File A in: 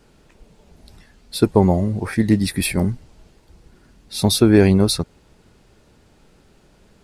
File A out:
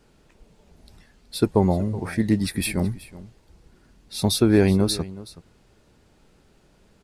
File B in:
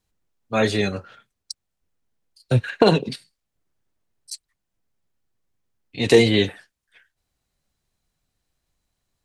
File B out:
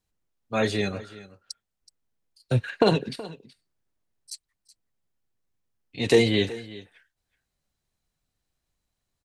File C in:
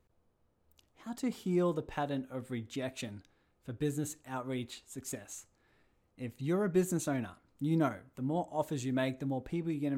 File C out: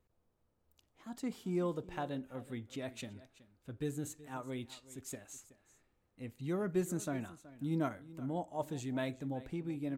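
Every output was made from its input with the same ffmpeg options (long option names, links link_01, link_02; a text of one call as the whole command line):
ffmpeg -i in.wav -af "aecho=1:1:374:0.126,volume=-4.5dB" out.wav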